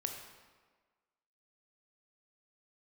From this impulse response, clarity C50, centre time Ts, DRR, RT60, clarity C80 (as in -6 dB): 5.0 dB, 40 ms, 3.0 dB, 1.5 s, 6.5 dB